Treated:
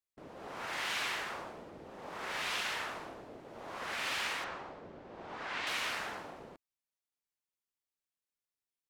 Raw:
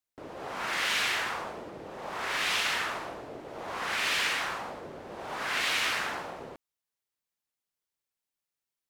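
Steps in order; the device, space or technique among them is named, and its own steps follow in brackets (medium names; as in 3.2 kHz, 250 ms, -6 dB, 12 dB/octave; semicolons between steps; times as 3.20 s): 4.44–5.67 s: distance through air 100 m; octave pedal (harmony voices -12 st -7 dB); trim -8 dB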